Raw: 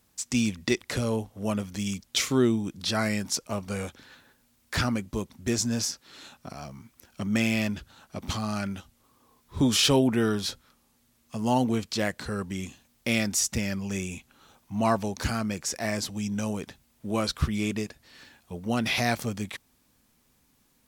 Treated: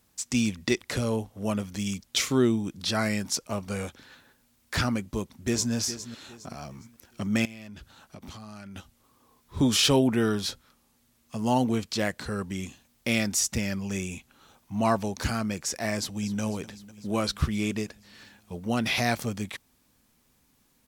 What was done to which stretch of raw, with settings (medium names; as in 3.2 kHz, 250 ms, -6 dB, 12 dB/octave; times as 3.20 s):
5.01–5.73 s: echo throw 410 ms, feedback 35%, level -12.5 dB
7.45–8.76 s: compression 10:1, threshold -39 dBFS
15.97–16.41 s: echo throw 250 ms, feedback 75%, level -15.5 dB